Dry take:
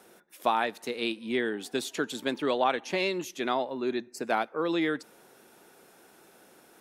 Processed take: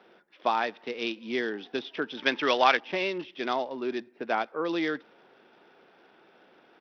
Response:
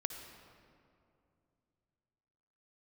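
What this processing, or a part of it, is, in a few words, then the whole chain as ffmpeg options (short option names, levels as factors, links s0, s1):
Bluetooth headset: -filter_complex "[0:a]asettb=1/sr,asplit=3[s0][s1][s2];[s0]atrim=end=2.174[s3];[s1]atrim=start=2.17:end=2.77,asetpts=PTS-STARTPTS,afade=t=in:d=0.004:c=qsin,afade=t=out:st=0.596:d=0.004:c=qsin,equalizer=f=2200:t=o:w=2.2:g=11[s4];[s2]atrim=start=2.766[s5];[s3][s4]acrossfade=d=0.004:c1=hsin:c2=qsin[s6];[s6][s5]acrossfade=d=0.004:c1=qsin:c2=hsin,highpass=f=210:p=1,aresample=8000,aresample=44100" -ar 44100 -c:a sbc -b:a 64k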